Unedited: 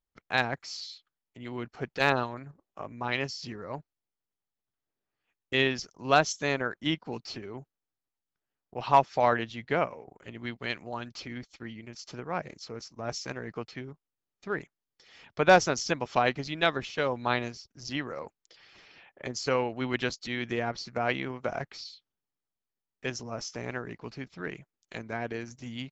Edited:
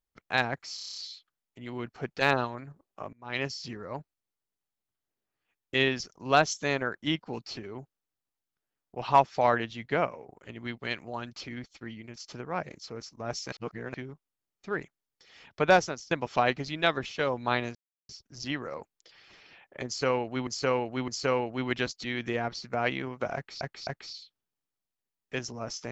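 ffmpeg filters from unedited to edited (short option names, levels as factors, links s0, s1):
-filter_complex "[0:a]asplit=17[s0][s1][s2][s3][s4][s5][s6][s7][s8][s9][s10][s11][s12][s13][s14][s15][s16];[s0]atrim=end=0.782[s17];[s1]atrim=start=0.748:end=0.782[s18];[s2]atrim=start=0.748:end=0.782[s19];[s3]atrim=start=0.748:end=0.782[s20];[s4]atrim=start=0.748:end=0.782[s21];[s5]atrim=start=0.748:end=0.782[s22];[s6]atrim=start=0.748:end=0.782[s23];[s7]atrim=start=0.748:end=2.92,asetpts=PTS-STARTPTS,afade=t=out:st=2.168:d=0.004:c=hsin:silence=0.0668344[s24];[s8]atrim=start=2.92:end=13.312,asetpts=PTS-STARTPTS,afade=t=in:d=0.26:c=qua:silence=0.0668344[s25];[s9]atrim=start=13.308:end=13.732,asetpts=PTS-STARTPTS,areverse[s26];[s10]atrim=start=13.728:end=15.9,asetpts=PTS-STARTPTS,afade=t=out:st=1.692:d=0.48:silence=0.0668344[s27];[s11]atrim=start=15.9:end=17.54,asetpts=PTS-STARTPTS,afade=t=in:d=0.004:c=hsin:silence=0.0668344,afade=t=out:st=1.636:d=0.004:c=hsin,apad=pad_dur=0.34[s28];[s12]atrim=start=17.54:end=19.922,asetpts=PTS-STARTPTS,afade=t=in:d=0.004:c=hsin[s29];[s13]atrim=start=19.308:end=19.922[s30];[s14]atrim=start=19.308:end=21.842[s31];[s15]atrim=start=21.578:end=21.842[s32];[s16]atrim=start=21.578[s33];[s17][s18]acrossfade=d=0.004:c1=hsin:c2=hsin[s34];[s34][s19]acrossfade=d=0.004:c1=hsin:c2=hsin[s35];[s35][s20]acrossfade=d=0.004:c1=hsin:c2=hsin[s36];[s36][s21]acrossfade=d=0.004:c1=hsin:c2=hsin[s37];[s37][s22]acrossfade=d=0.004:c1=hsin:c2=hsin[s38];[s38][s23]acrossfade=d=0.004:c1=hsin:c2=hsin[s39];[s24][s25]concat=n=2:v=0:a=1[s40];[s39][s40]acrossfade=d=0.004:c1=hsin:c2=hsin[s41];[s41][s26]acrossfade=d=0.004:c1=hsin:c2=hsin[s42];[s27][s28][s29]concat=n=3:v=0:a=1[s43];[s42][s43]acrossfade=d=0.004:c1=hsin:c2=hsin[s44];[s44][s30]acrossfade=d=0.004:c1=hsin:c2=hsin[s45];[s45][s31]acrossfade=d=0.004:c1=hsin:c2=hsin[s46];[s46][s32]acrossfade=d=0.004:c1=hsin:c2=hsin[s47];[s47][s33]acrossfade=d=0.004:c1=hsin:c2=hsin"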